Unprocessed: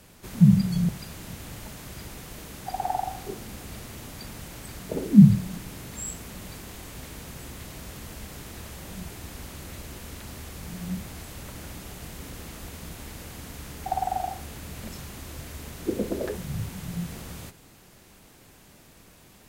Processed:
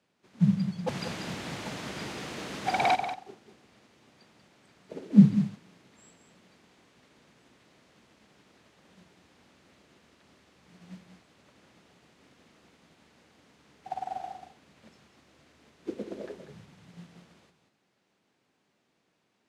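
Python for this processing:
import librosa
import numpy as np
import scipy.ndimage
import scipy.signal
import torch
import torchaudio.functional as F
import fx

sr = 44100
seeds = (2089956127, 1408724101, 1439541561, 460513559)

y = fx.fold_sine(x, sr, drive_db=12, ceiling_db=-15.0, at=(0.86, 2.94), fade=0.02)
y = fx.bandpass_edges(y, sr, low_hz=190.0, high_hz=4900.0)
y = y + 10.0 ** (-7.0 / 20.0) * np.pad(y, (int(189 * sr / 1000.0), 0))[:len(y)]
y = fx.upward_expand(y, sr, threshold_db=-47.0, expansion=1.5)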